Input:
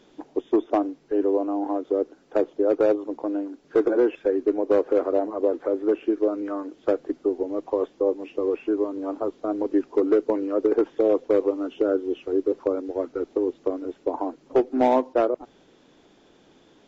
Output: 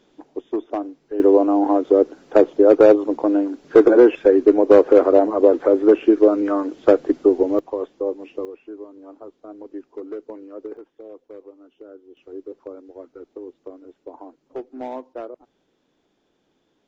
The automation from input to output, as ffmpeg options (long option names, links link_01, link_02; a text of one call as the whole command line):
ffmpeg -i in.wav -af "asetnsamples=nb_out_samples=441:pad=0,asendcmd='1.2 volume volume 9dB;7.59 volume volume -1.5dB;8.45 volume volume -12.5dB;10.77 volume volume -20dB;12.17 volume volume -12dB',volume=-3.5dB" out.wav